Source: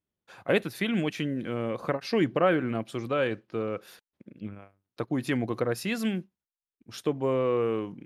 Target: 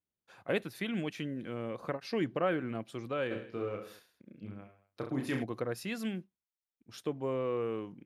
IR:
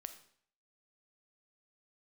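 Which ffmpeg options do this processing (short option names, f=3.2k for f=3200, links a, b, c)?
-filter_complex "[0:a]asplit=3[a][b][c];[a]afade=t=out:st=3.3:d=0.02[d];[b]aecho=1:1:30|66|109.2|161|223.2:0.631|0.398|0.251|0.158|0.1,afade=t=in:st=3.3:d=0.02,afade=t=out:st=5.42:d=0.02[e];[c]afade=t=in:st=5.42:d=0.02[f];[d][e][f]amix=inputs=3:normalize=0,volume=-7.5dB"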